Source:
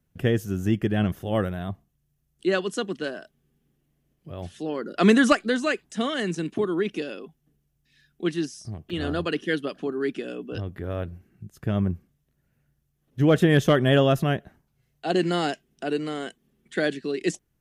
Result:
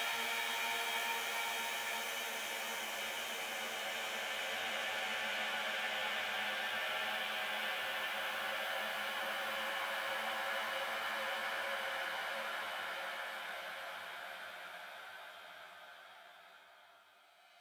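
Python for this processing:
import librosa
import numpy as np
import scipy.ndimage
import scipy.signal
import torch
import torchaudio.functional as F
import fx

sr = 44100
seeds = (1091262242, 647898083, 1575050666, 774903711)

y = fx.lower_of_two(x, sr, delay_ms=1.3)
y = scipy.signal.sosfilt(scipy.signal.butter(2, 1400.0, 'highpass', fs=sr, output='sos'), y)
y = fx.doubler(y, sr, ms=13.0, db=-5.0)
y = fx.paulstretch(y, sr, seeds[0], factor=10.0, window_s=1.0, from_s=0.32)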